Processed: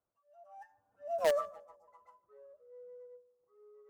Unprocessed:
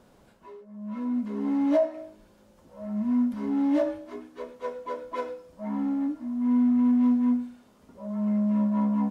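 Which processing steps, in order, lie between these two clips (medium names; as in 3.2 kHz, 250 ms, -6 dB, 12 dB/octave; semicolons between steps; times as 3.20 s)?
Doppler pass-by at 2.94 s, 57 m/s, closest 6.5 m; high-order bell 1.2 kHz -13.5 dB; in parallel at -7 dB: bit crusher 4-bit; on the sum: spectral selection erased 4.12–4.39 s, 400–1900 Hz; on a send: filtered feedback delay 342 ms, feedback 44%, low-pass 1 kHz, level -20.5 dB; on the sum: speed mistake 33 rpm record played at 78 rpm; tape noise reduction on one side only decoder only; trim -1.5 dB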